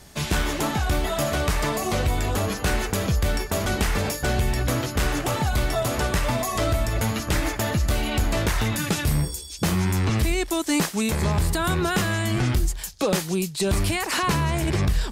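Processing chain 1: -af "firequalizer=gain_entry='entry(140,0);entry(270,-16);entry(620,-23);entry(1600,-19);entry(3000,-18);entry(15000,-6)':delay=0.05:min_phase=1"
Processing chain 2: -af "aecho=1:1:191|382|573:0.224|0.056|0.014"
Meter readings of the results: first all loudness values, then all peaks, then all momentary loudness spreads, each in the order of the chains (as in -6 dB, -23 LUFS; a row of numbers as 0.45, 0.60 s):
-28.5, -24.0 LUFS; -14.0, -12.0 dBFS; 7, 2 LU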